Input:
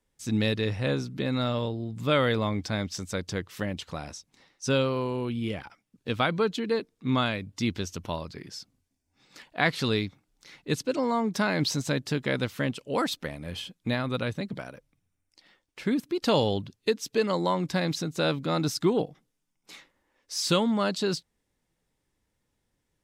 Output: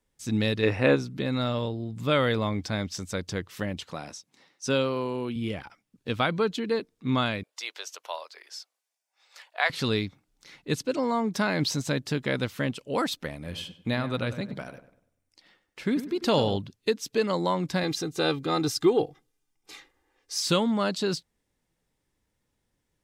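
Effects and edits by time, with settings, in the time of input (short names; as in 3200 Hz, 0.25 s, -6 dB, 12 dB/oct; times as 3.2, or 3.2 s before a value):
0.63–0.96 spectral gain 220–2900 Hz +8 dB
3.86–5.36 HPF 150 Hz
7.43–9.7 inverse Chebyshev high-pass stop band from 220 Hz, stop band 50 dB
13.35–16.57 darkening echo 98 ms, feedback 38%, low-pass 2200 Hz, level -11.5 dB
17.83–20.4 comb 2.5 ms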